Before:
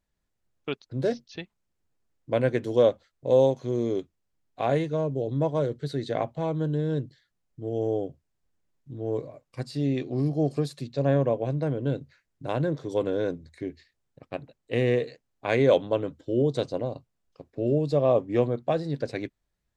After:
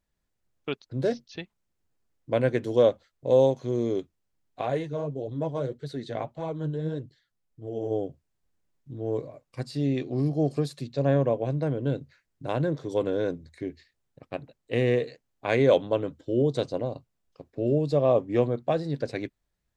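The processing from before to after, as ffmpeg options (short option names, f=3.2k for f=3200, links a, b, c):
-filter_complex "[0:a]asplit=3[a][b][c];[a]afade=t=out:st=4.61:d=0.02[d];[b]flanger=delay=0.8:depth=8.5:regen=43:speed=1.7:shape=triangular,afade=t=in:st=4.61:d=0.02,afade=t=out:st=7.9:d=0.02[e];[c]afade=t=in:st=7.9:d=0.02[f];[d][e][f]amix=inputs=3:normalize=0"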